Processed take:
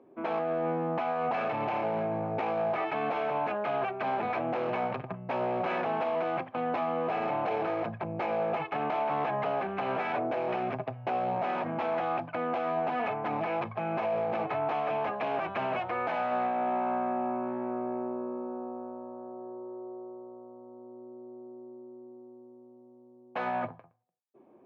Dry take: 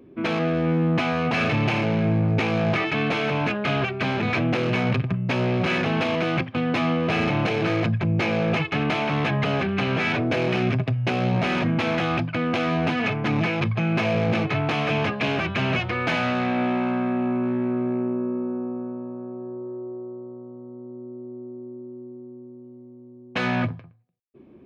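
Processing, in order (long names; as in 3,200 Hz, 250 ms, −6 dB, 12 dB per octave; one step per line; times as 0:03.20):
resonant band-pass 780 Hz, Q 2.2
brickwall limiter −26 dBFS, peak gain reduction 6.5 dB
level +3.5 dB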